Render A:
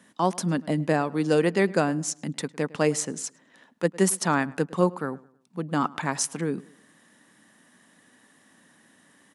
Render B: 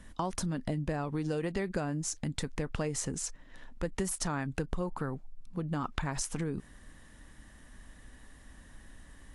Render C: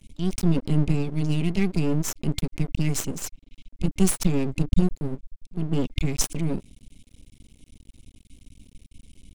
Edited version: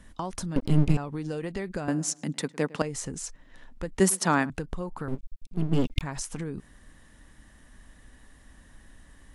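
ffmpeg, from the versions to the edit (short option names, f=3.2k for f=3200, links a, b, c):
-filter_complex "[2:a]asplit=2[a][b];[0:a]asplit=2[c][d];[1:a]asplit=5[e][f][g][h][i];[e]atrim=end=0.562[j];[a]atrim=start=0.558:end=0.972[k];[f]atrim=start=0.968:end=1.882[l];[c]atrim=start=1.878:end=2.822[m];[g]atrim=start=2.818:end=4.002[n];[d]atrim=start=3.998:end=4.502[o];[h]atrim=start=4.498:end=5.082[p];[b]atrim=start=5.078:end=6.012[q];[i]atrim=start=6.008[r];[j][k]acrossfade=d=0.004:c1=hsin:c2=hsin[s];[s][l]acrossfade=d=0.004:c1=hsin:c2=hsin[t];[t][m]acrossfade=d=0.004:c1=hsin:c2=hsin[u];[u][n]acrossfade=d=0.004:c1=hsin:c2=hsin[v];[v][o]acrossfade=d=0.004:c1=hsin:c2=hsin[w];[w][p]acrossfade=d=0.004:c1=hsin:c2=hsin[x];[x][q]acrossfade=d=0.004:c1=hsin:c2=hsin[y];[y][r]acrossfade=d=0.004:c1=hsin:c2=hsin"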